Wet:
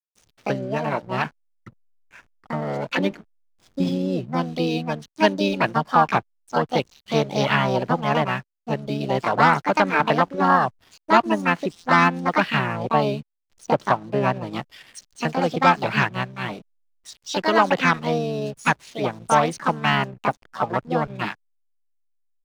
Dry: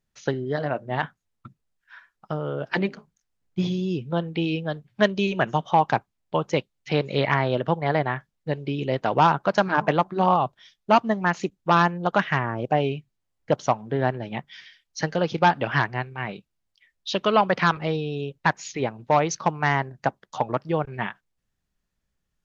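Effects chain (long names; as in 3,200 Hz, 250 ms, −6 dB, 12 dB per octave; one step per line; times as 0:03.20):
multiband delay without the direct sound highs, lows 220 ms, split 5,200 Hz
pitch-shifted copies added +5 semitones −15 dB, +7 semitones −2 dB
slack as between gear wheels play −41 dBFS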